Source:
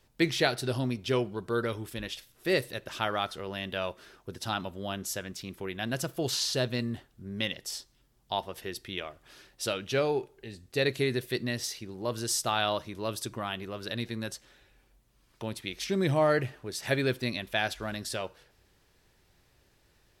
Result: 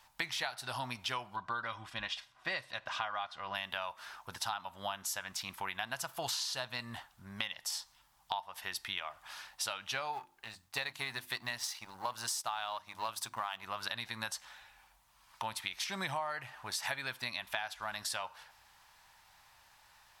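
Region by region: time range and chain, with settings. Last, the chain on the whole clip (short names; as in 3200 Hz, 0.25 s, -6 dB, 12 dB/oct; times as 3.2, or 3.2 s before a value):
1.36–3.55 LPF 5000 Hz + notch comb 440 Hz + mismatched tape noise reduction decoder only
10.13–13.63 G.711 law mismatch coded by A + notches 50/100/150/200/250/300/350 Hz
whole clip: resonant low shelf 600 Hz -13.5 dB, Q 3; compressor 10:1, threshold -39 dBFS; gain +5 dB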